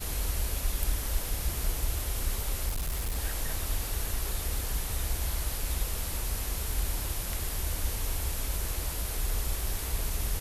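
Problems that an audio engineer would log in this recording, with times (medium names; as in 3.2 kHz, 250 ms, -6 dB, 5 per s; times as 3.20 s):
2.68–3.16 s: clipped -27.5 dBFS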